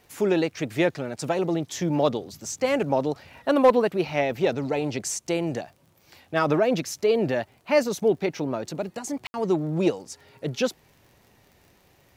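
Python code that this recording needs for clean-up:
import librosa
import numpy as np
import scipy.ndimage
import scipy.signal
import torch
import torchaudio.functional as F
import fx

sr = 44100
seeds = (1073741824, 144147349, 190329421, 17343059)

y = fx.fix_declip(x, sr, threshold_db=-9.0)
y = fx.fix_declick_ar(y, sr, threshold=6.5)
y = fx.fix_ambience(y, sr, seeds[0], print_start_s=11.62, print_end_s=12.12, start_s=9.27, end_s=9.34)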